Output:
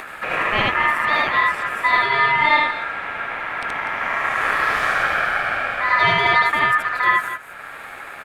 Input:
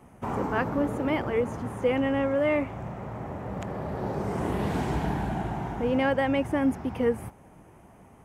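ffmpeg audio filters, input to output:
-af "aecho=1:1:75.8|244.9:1|0.282,aeval=exprs='val(0)*sin(2*PI*1500*n/s)':c=same,acompressor=mode=upward:threshold=-32dB:ratio=2.5,volume=8dB"

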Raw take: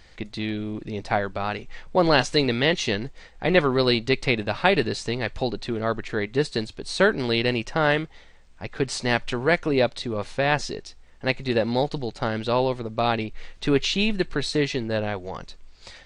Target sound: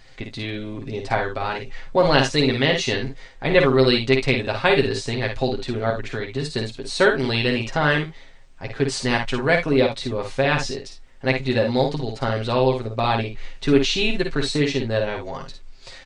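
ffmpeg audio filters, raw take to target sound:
-filter_complex "[0:a]aecho=1:1:7.5:0.65,asettb=1/sr,asplit=3[a][b][c];[a]atrim=end=5.904[d];[b]atrim=start=5.9:end=6.5,asetpts=PTS-STARTPTS,afade=t=in:d=0.004:c=qsin,afade=t=out:st=0.596:d=0.004:c=qsin,acrossover=split=150|3000[e][f][g];[f]acompressor=threshold=-26dB:ratio=6[h];[e][h][g]amix=inputs=3:normalize=0[i];[c]atrim=start=6.496[j];[d][i]acrossfade=d=0.004:c1=hsin:c2=qsin[k];[k][j]acrossfade=d=0.004:c1=qsin:c2=hsin,aecho=1:1:53|71:0.501|0.178"

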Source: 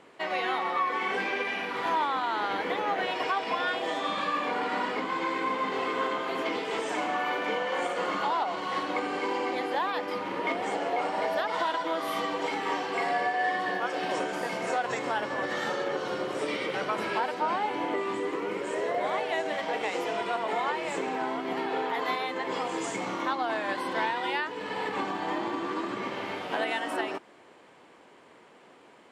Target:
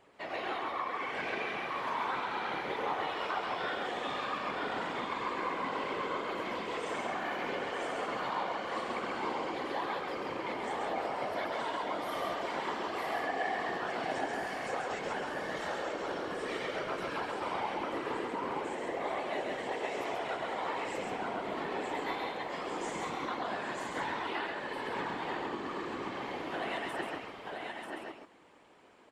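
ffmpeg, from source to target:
-filter_complex "[0:a]asplit=2[a][b];[b]aecho=0:1:937:0.596[c];[a][c]amix=inputs=2:normalize=0,afftfilt=real='hypot(re,im)*cos(2*PI*random(0))':imag='hypot(re,im)*sin(2*PI*random(1))':win_size=512:overlap=0.75,asplit=2[d][e];[e]aecho=0:1:135:0.631[f];[d][f]amix=inputs=2:normalize=0,volume=-2.5dB"

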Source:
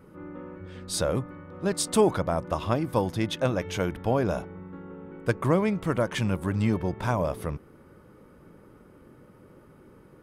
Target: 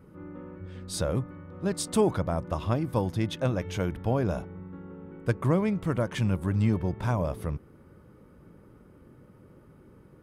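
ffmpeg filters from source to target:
-af "equalizer=f=77:w=0.37:g=7,volume=-4.5dB"

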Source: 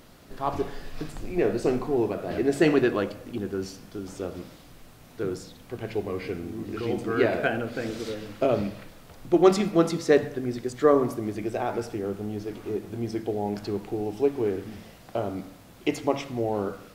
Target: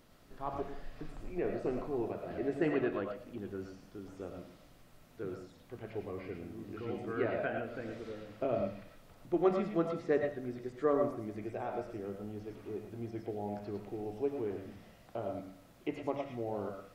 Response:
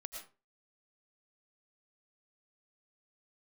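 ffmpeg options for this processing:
-filter_complex "[0:a]acrossover=split=2700[a][b];[b]acompressor=threshold=-57dB:ratio=4:attack=1:release=60[c];[a][c]amix=inputs=2:normalize=0[d];[1:a]atrim=start_sample=2205,afade=t=out:st=0.17:d=0.01,atrim=end_sample=7938[e];[d][e]afir=irnorm=-1:irlink=0,volume=-6dB"

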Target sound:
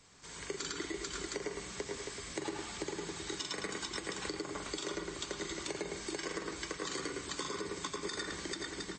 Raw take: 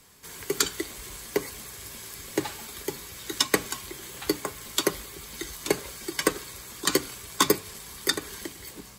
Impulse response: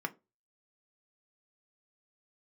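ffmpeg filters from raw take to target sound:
-filter_complex "[0:a]aecho=1:1:42|102|441|530|712:0.473|0.473|0.501|0.168|0.2,asplit=2[a][b];[1:a]atrim=start_sample=2205,adelay=109[c];[b][c]afir=irnorm=-1:irlink=0,volume=-6.5dB[d];[a][d]amix=inputs=2:normalize=0,alimiter=limit=-15.5dB:level=0:latency=1:release=118,acompressor=threshold=-29dB:ratio=10,volume=-5dB" -ar 22050 -c:a libmp3lame -b:a 32k

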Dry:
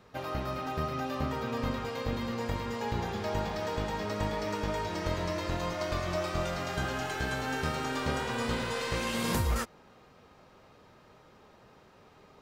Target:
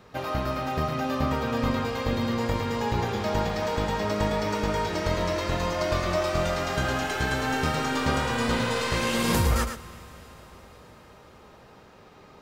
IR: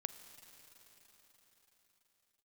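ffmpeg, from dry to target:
-filter_complex "[0:a]asplit=2[a][b];[1:a]atrim=start_sample=2205,adelay=111[c];[b][c]afir=irnorm=-1:irlink=0,volume=-5dB[d];[a][d]amix=inputs=2:normalize=0,volume=5.5dB"

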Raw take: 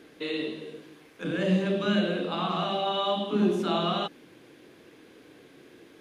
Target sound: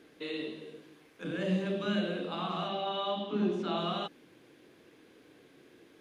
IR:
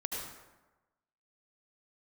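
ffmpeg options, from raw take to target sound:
-filter_complex "[0:a]asettb=1/sr,asplit=3[a][b][c];[a]atrim=end=2.684[d];[b]atrim=start=2.68:end=3.78,asetpts=PTS-STARTPTS,afade=t=in:d=0.004:c=qsin,afade=t=out:st=1.096:d=0.004:c=qsin,lowpass=5.4k[e];[c]atrim=start=3.776[f];[d][e]acrossfade=d=0.004:c1=hsin:c2=qsin[g];[g][f]acrossfade=d=0.004:c1=qsin:c2=hsin,volume=-6dB"

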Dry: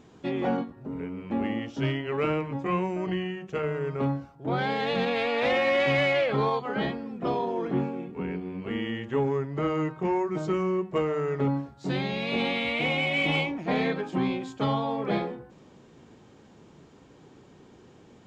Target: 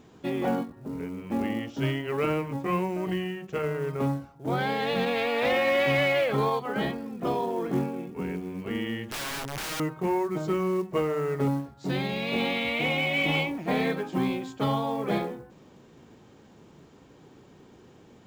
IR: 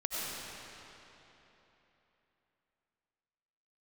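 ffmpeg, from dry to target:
-filter_complex "[0:a]asettb=1/sr,asplit=3[a][b][c];[a]atrim=end=9.064[d];[b]atrim=start=9.06:end=9.8,asetpts=PTS-STARTPTS,afade=t=in:d=0.004:c=qsin,afade=t=out:st=0.736:d=0.004:c=qsin,aeval=exprs='(mod(28.2*val(0)+1,2)-1)/28.2':c=same[e];[c]atrim=start=9.796[f];[d][e]acrossfade=d=0.004:c1=hsin:c2=qsin[g];[g][f]acrossfade=d=0.004:c1=qsin:c2=hsin,acrusher=bits=7:mode=log:mix=0:aa=0.000001"

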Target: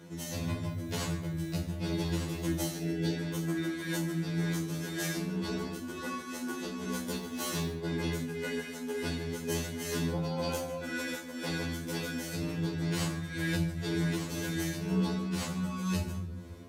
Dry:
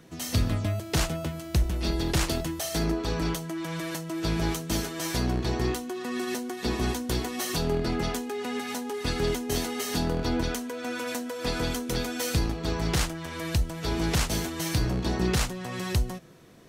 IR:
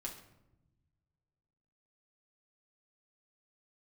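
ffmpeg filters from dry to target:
-filter_complex "[0:a]highpass=190,lowshelf=f=240:g=12,bandreject=f=60:t=h:w=6,bandreject=f=120:t=h:w=6,bandreject=f=180:t=h:w=6,bandreject=f=240:t=h:w=6,bandreject=f=300:t=h:w=6,alimiter=limit=-21.5dB:level=0:latency=1:release=343,tremolo=f=2:d=0.59,asplit=3[a][b][c];[a]afade=t=out:st=2.71:d=0.02[d];[b]asuperstop=centerf=1100:order=4:qfactor=1.8,afade=t=in:st=2.71:d=0.02,afade=t=out:st=3.18:d=0.02[e];[c]afade=t=in:st=3.18:d=0.02[f];[d][e][f]amix=inputs=3:normalize=0,asettb=1/sr,asplit=3[g][h][i];[g]atrim=end=7.164[j];[h]atrim=start=7.16:end=7.73,asetpts=PTS-STARTPTS,afade=t=in:d=0.004:c=qsin,afade=t=out:st=0.566:d=0.004:c=qsin,acrusher=bits=6:mode=log:mix=0:aa=0.000001[k];[i]atrim=start=7.726[l];[j][k]acrossfade=d=0.004:c1=hsin:c2=qsin[m];[m][l]acrossfade=d=0.004:c1=qsin:c2=hsin,asettb=1/sr,asplit=3[n][o][p];[n]atrim=end=10.134[q];[o]atrim=start=10.13:end=10.82,asetpts=PTS-STARTPTS,afade=t=in:d=0.004:c=qsin,afade=t=out:st=0.686:d=0.004:c=qsin,afreqshift=40[r];[p]atrim=start=10.816[s];[q][r]acrossfade=d=0.004:c1=hsin:c2=qsin[t];[t][s]acrossfade=d=0.004:c1=qsin:c2=hsin[u];[1:a]atrim=start_sample=2205,asetrate=39249,aresample=44100[v];[u][v]afir=irnorm=-1:irlink=0,afftfilt=real='re*2*eq(mod(b,4),0)':imag='im*2*eq(mod(b,4),0)':win_size=2048:overlap=0.75,volume=5dB"

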